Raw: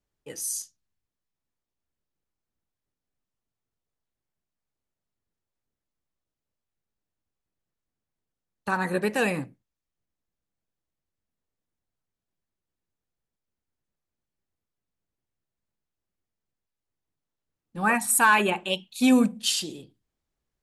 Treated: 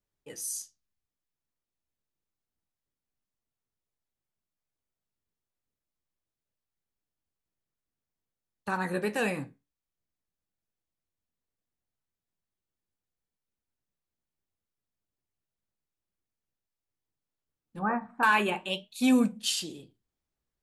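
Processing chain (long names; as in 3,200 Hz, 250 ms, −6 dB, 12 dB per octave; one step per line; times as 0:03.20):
0:17.79–0:18.23: low-pass filter 1,400 Hz 24 dB per octave
flanger 0.47 Hz, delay 8.5 ms, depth 7.9 ms, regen −65%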